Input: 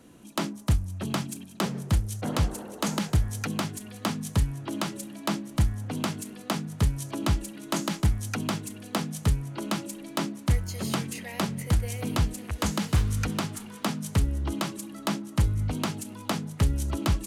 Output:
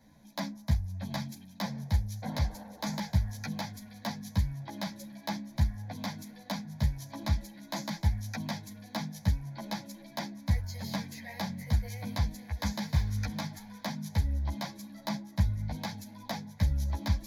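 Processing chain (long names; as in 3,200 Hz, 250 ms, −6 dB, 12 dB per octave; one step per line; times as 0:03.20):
phaser with its sweep stopped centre 1,900 Hz, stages 8
string-ensemble chorus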